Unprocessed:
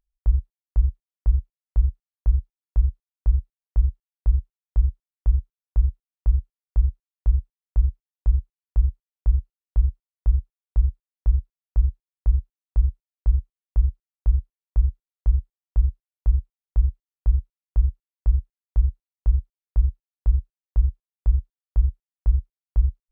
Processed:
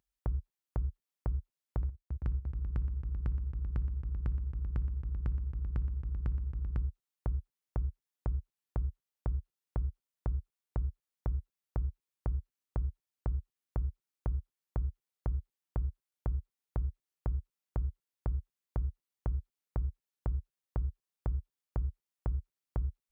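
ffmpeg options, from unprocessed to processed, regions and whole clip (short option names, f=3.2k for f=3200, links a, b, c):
-filter_complex "[0:a]asettb=1/sr,asplit=3[a][b][c];[a]atrim=end=1.834[d];[b]atrim=start=1.83:end=6.8,asetpts=PTS-STARTPTS,afade=t=in:d=0.004:c=qsin,afade=t=out:st=4.966:d=0.004:c=qsin,agate=range=-11dB:threshold=-41dB:ratio=16:release=100:detection=peak,aecho=1:1:61|274|388|621:0.141|0.299|0.237|0.473,atrim=end_sample=219177[e];[c]atrim=start=6.796[f];[d][e]acrossfade=d=0.004:c1=hsin:c2=qsin[g];[g][f]acrossfade=d=0.004:c1=qsin:c2=hsin,highpass=94,bandreject=f=670:w=12,acompressor=threshold=-33dB:ratio=6,volume=3dB"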